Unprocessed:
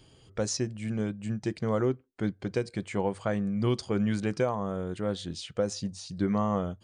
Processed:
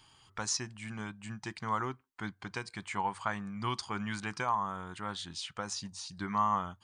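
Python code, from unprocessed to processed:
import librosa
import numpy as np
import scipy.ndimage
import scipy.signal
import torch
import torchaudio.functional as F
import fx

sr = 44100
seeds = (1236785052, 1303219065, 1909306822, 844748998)

y = fx.low_shelf_res(x, sr, hz=710.0, db=-10.0, q=3.0)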